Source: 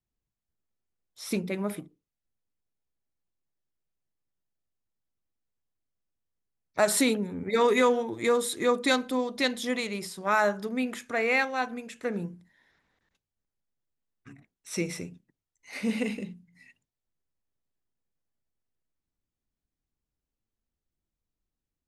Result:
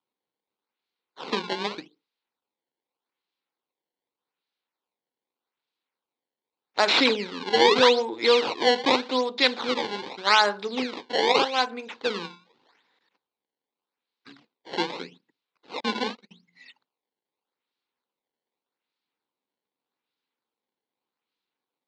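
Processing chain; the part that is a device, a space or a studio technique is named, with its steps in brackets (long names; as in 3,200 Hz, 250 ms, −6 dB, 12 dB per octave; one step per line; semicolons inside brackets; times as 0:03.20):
0:15.80–0:16.31: noise gate −31 dBFS, range −39 dB
circuit-bent sampling toy (sample-and-hold swept by an LFO 20×, swing 160% 0.83 Hz; loudspeaker in its box 460–4,500 Hz, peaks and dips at 630 Hz −9 dB, 1,200 Hz −4 dB, 1,800 Hz −5 dB, 4,000 Hz +3 dB)
octave-band graphic EQ 125/250/500/1,000/2,000/4,000/8,000 Hz +7/+7/+6/+7/+5/+8/+10 dB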